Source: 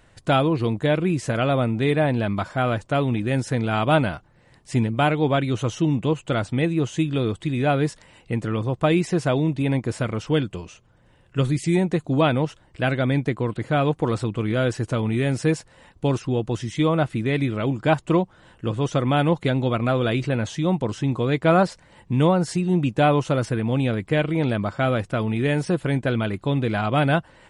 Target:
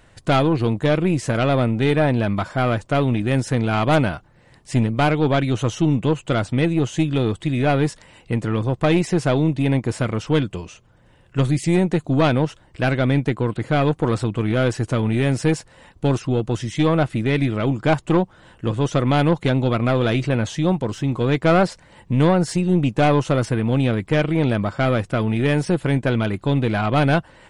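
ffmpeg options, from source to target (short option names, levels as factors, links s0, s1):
-filter_complex "[0:a]asettb=1/sr,asplit=3[s0][s1][s2];[s0]atrim=end=20.724[s3];[s1]atrim=start=20.72:end=21.21,asetpts=PTS-STARTPTS,afade=t=in:d=0.004:c=qsin,afade=t=out:st=0.486:d=0.004:c=qsin,aeval=exprs='if(lt(val(0),0),0.708*val(0),val(0))':c=same[s4];[s2]atrim=start=21.206[s5];[s3][s4]acrossfade=d=0.004:c1=hsin:c2=qsin[s6];[s6][s5]acrossfade=d=0.004:c1=qsin:c2=hsin,aeval=exprs='0.501*(cos(1*acos(clip(val(0)/0.501,-1,1)))-cos(1*PI/2))+0.0631*(cos(4*acos(clip(val(0)/0.501,-1,1)))-cos(4*PI/2))+0.0447*(cos(5*acos(clip(val(0)/0.501,-1,1)))-cos(5*PI/2))':c=same"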